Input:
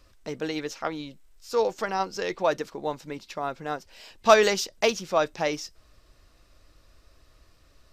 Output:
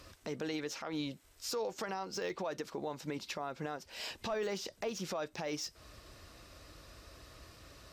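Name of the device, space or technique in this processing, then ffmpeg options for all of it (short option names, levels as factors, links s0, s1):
podcast mastering chain: -af "highpass=65,deesser=0.85,acompressor=threshold=0.00631:ratio=2,alimiter=level_in=3.76:limit=0.0631:level=0:latency=1:release=89,volume=0.266,volume=2.37" -ar 48000 -c:a libmp3lame -b:a 96k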